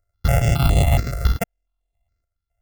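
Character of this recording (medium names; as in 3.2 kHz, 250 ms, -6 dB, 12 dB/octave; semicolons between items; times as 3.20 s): a buzz of ramps at a fixed pitch in blocks of 64 samples; chopped level 0.8 Hz, depth 65%, duty 80%; notches that jump at a steady rate 7.2 Hz 850–5300 Hz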